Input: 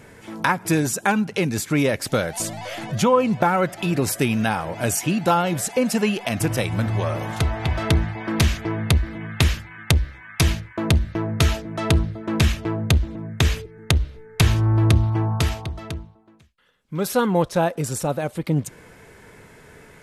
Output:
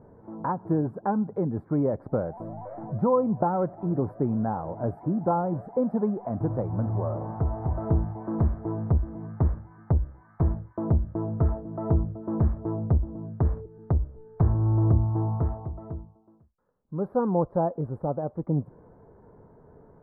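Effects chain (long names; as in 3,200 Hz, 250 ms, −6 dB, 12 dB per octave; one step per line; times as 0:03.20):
inverse Chebyshev low-pass filter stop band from 2,600 Hz, stop band 50 dB
level −4.5 dB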